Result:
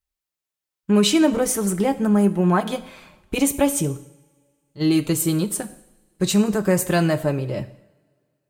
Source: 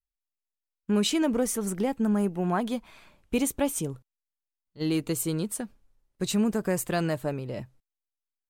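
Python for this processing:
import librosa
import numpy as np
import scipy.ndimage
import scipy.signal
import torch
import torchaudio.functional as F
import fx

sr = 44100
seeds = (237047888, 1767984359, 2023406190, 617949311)

y = fx.notch_comb(x, sr, f0_hz=240.0)
y = fx.rev_double_slope(y, sr, seeds[0], early_s=0.71, late_s=2.3, knee_db=-22, drr_db=11.0)
y = F.gain(torch.from_numpy(y), 8.5).numpy()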